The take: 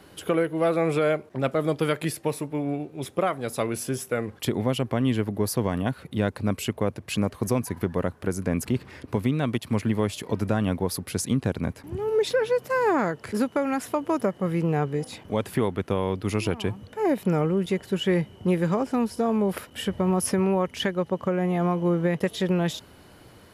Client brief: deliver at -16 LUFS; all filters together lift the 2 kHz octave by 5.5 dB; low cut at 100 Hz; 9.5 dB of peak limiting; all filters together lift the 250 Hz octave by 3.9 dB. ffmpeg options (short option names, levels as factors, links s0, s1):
-af "highpass=100,equalizer=f=250:t=o:g=5.5,equalizer=f=2000:t=o:g=7,volume=3.55,alimiter=limit=0.562:level=0:latency=1"